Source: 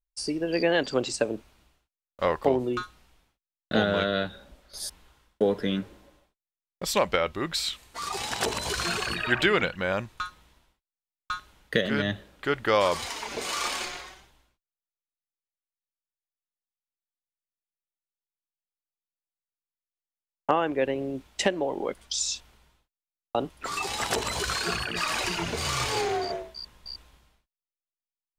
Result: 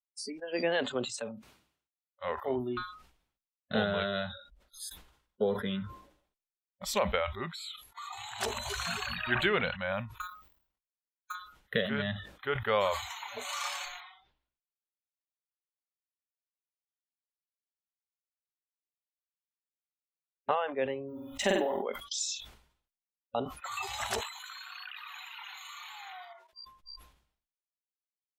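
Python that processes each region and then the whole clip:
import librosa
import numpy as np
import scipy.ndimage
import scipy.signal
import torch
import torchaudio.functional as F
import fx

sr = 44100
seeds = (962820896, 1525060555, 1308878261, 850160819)

y = fx.chain(x, sr, fx.highpass(hz=110.0, slope=12),
    fx.peak_eq(hz=670.0, db=-2.5, octaves=0.84),
    fx.transient(attack_db=-7, sustain_db=-3), at=(0.94, 2.58))
y = fx.chain(y, sr, fx.steep_lowpass(hz=12000.0, slope=72),
    fx.level_steps(step_db=12), at=(7.5, 8.4))
y = fx.chain(y, sr, fx.dead_time(dead_ms=0.12),
    fx.level_steps(step_db=10), at=(10.2, 11.35))
y = fx.chain(y, sr, fx.block_float(bits=5),
    fx.lowpass(hz=4700.0, slope=24), at=(14.0, 20.55))
y = fx.chain(y, sr, fx.law_mismatch(coded='A'),
    fx.room_flutter(wall_m=8.1, rt60_s=0.48),
    fx.sustainer(db_per_s=23.0), at=(21.08, 21.82))
y = fx.chain(y, sr, fx.highpass(hz=970.0, slope=12),
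    fx.level_steps(step_db=13), at=(24.2, 26.53))
y = fx.noise_reduce_blind(y, sr, reduce_db=28)
y = fx.sustainer(y, sr, db_per_s=98.0)
y = y * 10.0 ** (-5.5 / 20.0)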